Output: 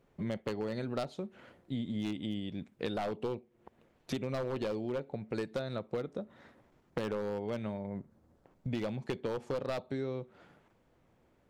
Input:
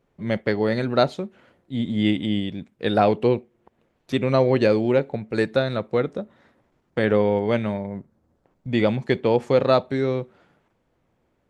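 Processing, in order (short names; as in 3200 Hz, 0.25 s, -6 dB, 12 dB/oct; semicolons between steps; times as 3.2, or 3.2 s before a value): one-sided fold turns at -12.5 dBFS; dynamic EQ 1900 Hz, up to -4 dB, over -43 dBFS, Q 1.9; compressor 6:1, threshold -34 dBFS, peak gain reduction 17.5 dB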